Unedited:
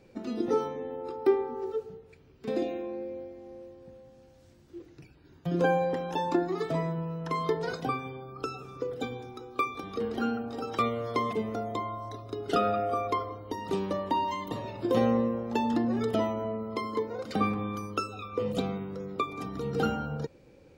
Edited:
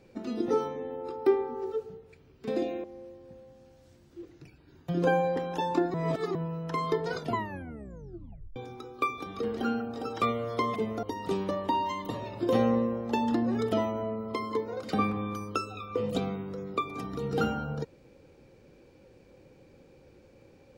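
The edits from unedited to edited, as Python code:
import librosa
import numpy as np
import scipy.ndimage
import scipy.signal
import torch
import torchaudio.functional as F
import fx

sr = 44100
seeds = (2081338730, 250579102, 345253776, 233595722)

y = fx.edit(x, sr, fx.cut(start_s=2.84, length_s=0.57),
    fx.reverse_span(start_s=6.51, length_s=0.41),
    fx.tape_stop(start_s=7.72, length_s=1.41),
    fx.cut(start_s=11.6, length_s=1.85), tone=tone)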